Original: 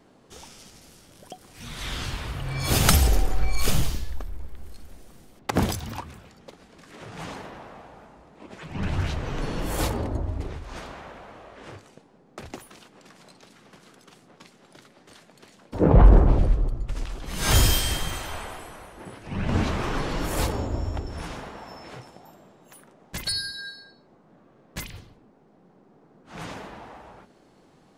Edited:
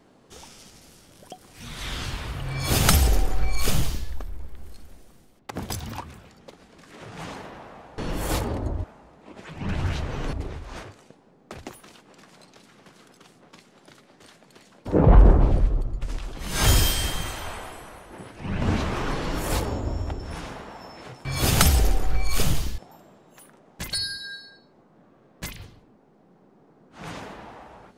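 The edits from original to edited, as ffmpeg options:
-filter_complex "[0:a]asplit=8[a][b][c][d][e][f][g][h];[a]atrim=end=5.7,asetpts=PTS-STARTPTS,afade=t=out:st=4.72:d=0.98:silence=0.199526[i];[b]atrim=start=5.7:end=7.982,asetpts=PTS-STARTPTS,afade=t=in:d=0.004:c=hsin:silence=0.199526[j];[c]atrim=start=9.468:end=10.332[k];[d]atrim=start=7.978:end=9.472[l];[e]atrim=start=10.328:end=10.832[m];[f]atrim=start=11.698:end=22.122[n];[g]atrim=start=2.528:end=4.062[o];[h]atrim=start=22.118[p];[i][j]concat=n=2:v=0:a=1[q];[q][k]acrossfade=d=0.004:c1=hsin:c2=hsin[r];[r][l]acrossfade=d=0.004:c1=hsin:c2=hsin[s];[s][m]acrossfade=d=0.004:c1=hsin:c2=hsin[t];[t][n]acrossfade=d=0.004:c1=hsin:c2=hsin[u];[u][o]acrossfade=d=0.004:c1=hsin:c2=hsin[v];[v][p]acrossfade=d=0.004:c1=hsin:c2=hsin"

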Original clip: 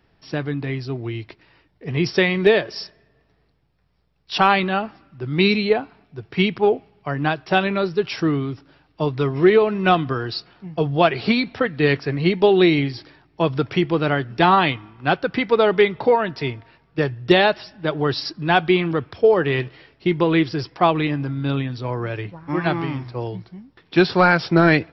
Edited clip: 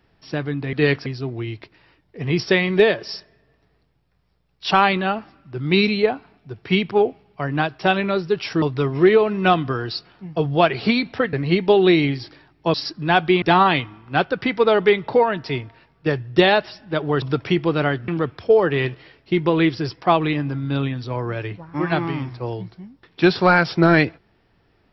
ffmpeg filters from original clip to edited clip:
-filter_complex "[0:a]asplit=9[a][b][c][d][e][f][g][h][i];[a]atrim=end=0.732[j];[b]atrim=start=11.738:end=12.072[k];[c]atrim=start=0.728:end=8.292[l];[d]atrim=start=9.028:end=11.742[m];[e]atrim=start=12.068:end=13.482[n];[f]atrim=start=18.138:end=18.822[o];[g]atrim=start=14.338:end=18.142[p];[h]atrim=start=13.478:end=14.342[q];[i]atrim=start=18.818[r];[j][k]acrossfade=d=0.004:c1=hsin:c2=hsin[s];[s][l]acrossfade=d=0.004:c1=hsin:c2=hsin[t];[t][m]acrossfade=d=0.004:c1=hsin:c2=hsin[u];[u][n]acrossfade=d=0.004:c1=hsin:c2=hsin[v];[v][o]acrossfade=d=0.004:c1=hsin:c2=hsin[w];[w][p]acrossfade=d=0.004:c1=hsin:c2=hsin[x];[x][q]acrossfade=d=0.004:c1=hsin:c2=hsin[y];[y][r]acrossfade=d=0.004:c1=hsin:c2=hsin"

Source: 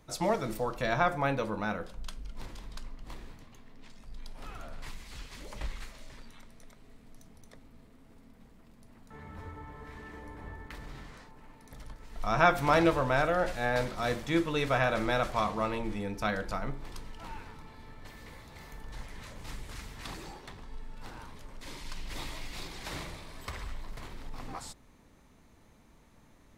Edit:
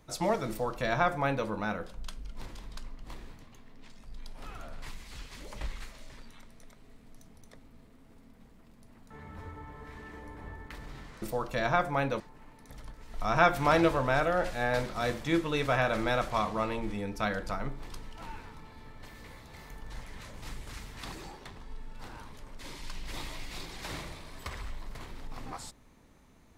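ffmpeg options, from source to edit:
-filter_complex "[0:a]asplit=3[a][b][c];[a]atrim=end=11.222[d];[b]atrim=start=0.488:end=1.472[e];[c]atrim=start=11.218[f];[d][e]acrossfade=d=0.004:c1=hsin:c2=hsin[g];[g][f]acrossfade=d=0.004:c1=hsin:c2=hsin"

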